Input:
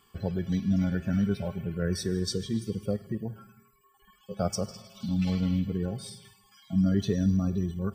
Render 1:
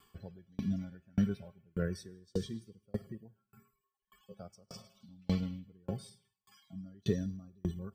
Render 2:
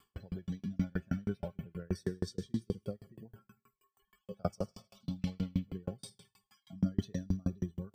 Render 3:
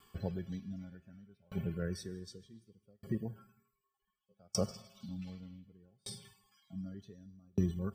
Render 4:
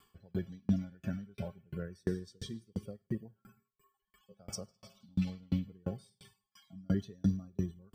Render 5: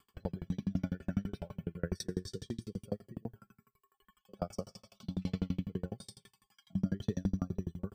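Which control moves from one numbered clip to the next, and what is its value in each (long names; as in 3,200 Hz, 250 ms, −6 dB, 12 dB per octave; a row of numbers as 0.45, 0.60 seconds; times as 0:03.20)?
tremolo with a ramp in dB, speed: 1.7, 6.3, 0.66, 2.9, 12 Hertz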